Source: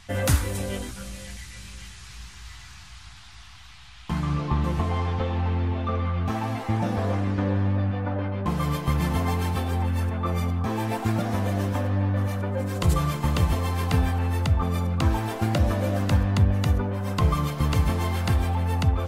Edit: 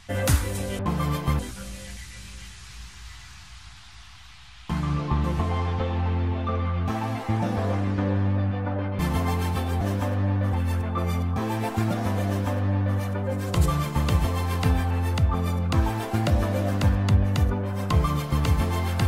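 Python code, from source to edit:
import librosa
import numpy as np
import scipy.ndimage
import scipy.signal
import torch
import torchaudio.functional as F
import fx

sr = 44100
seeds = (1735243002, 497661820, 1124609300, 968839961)

y = fx.edit(x, sr, fx.move(start_s=8.39, length_s=0.6, to_s=0.79),
    fx.duplicate(start_s=11.54, length_s=0.72, to_s=9.81), tone=tone)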